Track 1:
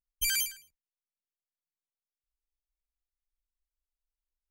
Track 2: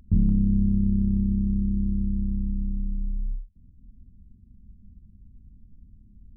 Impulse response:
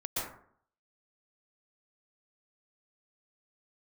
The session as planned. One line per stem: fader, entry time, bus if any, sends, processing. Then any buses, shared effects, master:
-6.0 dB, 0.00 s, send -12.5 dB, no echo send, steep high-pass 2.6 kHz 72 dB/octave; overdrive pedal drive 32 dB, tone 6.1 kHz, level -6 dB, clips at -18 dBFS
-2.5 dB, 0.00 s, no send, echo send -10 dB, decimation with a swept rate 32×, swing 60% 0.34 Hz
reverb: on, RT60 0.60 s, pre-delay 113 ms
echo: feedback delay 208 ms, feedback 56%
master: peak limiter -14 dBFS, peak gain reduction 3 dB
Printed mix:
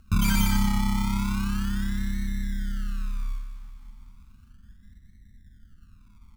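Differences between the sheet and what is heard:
stem 1: missing steep high-pass 2.6 kHz 72 dB/octave; master: missing peak limiter -14 dBFS, peak gain reduction 3 dB

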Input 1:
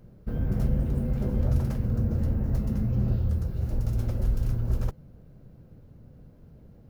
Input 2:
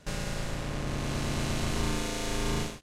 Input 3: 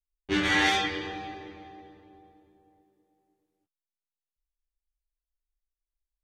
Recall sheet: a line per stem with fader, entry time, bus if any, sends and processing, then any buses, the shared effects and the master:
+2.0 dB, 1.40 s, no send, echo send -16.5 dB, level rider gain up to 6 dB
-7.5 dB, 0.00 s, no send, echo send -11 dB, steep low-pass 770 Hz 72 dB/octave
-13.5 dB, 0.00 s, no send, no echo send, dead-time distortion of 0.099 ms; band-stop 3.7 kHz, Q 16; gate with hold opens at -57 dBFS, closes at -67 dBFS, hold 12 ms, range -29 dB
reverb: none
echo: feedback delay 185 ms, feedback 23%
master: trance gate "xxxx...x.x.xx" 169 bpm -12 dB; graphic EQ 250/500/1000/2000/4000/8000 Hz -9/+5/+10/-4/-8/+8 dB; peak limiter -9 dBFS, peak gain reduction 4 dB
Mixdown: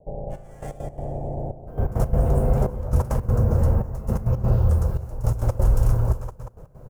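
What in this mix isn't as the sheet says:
stem 2 -7.5 dB -> +2.5 dB; stem 3 -13.5 dB -> -22.5 dB

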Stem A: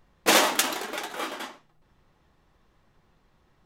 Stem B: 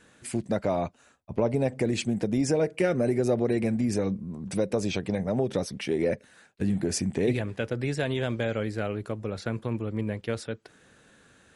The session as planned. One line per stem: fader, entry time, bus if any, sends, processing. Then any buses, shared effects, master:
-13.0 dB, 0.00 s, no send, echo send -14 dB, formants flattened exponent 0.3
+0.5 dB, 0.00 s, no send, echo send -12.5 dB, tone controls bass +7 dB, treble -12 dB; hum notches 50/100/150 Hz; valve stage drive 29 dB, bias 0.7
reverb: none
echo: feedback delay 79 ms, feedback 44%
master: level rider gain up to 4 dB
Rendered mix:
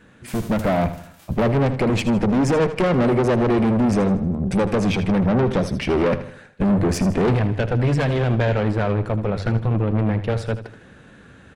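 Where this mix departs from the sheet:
stem A -13.0 dB -> -24.0 dB; stem B +0.5 dB -> +9.5 dB

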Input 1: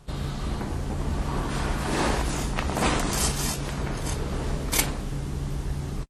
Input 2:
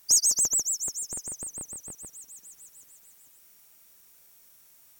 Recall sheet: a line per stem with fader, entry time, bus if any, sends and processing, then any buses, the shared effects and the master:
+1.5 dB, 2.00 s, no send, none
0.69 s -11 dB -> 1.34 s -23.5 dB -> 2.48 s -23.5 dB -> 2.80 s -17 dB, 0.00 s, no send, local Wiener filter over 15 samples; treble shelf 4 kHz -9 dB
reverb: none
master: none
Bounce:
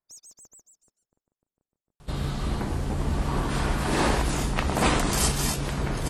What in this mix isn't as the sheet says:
stem 2 -11.0 dB -> -19.0 dB; master: extra peaking EQ 6.2 kHz -2 dB 0.36 oct

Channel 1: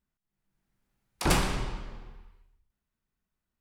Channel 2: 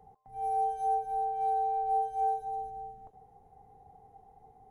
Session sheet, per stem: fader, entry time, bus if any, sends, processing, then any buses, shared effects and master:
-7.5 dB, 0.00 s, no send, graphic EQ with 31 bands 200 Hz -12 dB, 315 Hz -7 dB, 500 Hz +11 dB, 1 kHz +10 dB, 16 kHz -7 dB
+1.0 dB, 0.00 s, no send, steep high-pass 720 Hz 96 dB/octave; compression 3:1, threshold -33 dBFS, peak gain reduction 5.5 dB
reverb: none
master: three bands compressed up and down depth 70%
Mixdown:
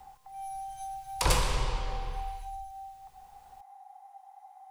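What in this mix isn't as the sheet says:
stem 1 -7.5 dB -> +4.0 dB; stem 2 +1.0 dB -> -10.0 dB

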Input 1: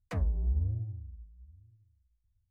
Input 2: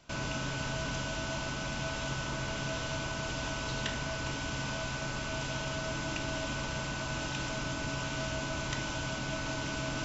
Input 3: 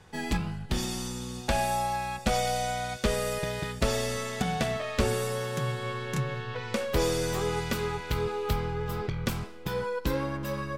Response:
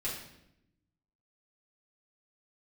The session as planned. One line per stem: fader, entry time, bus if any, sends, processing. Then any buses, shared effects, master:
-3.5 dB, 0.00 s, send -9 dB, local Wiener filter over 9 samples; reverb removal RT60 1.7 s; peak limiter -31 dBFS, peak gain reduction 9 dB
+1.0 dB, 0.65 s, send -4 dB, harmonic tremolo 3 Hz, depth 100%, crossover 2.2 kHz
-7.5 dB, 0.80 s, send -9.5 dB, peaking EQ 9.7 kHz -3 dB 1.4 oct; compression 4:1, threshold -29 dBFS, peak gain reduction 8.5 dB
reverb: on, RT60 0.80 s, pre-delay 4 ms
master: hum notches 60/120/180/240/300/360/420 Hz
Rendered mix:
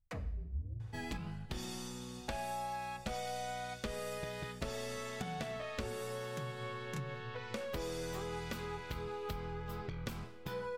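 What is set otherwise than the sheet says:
stem 2: muted; stem 3: send off

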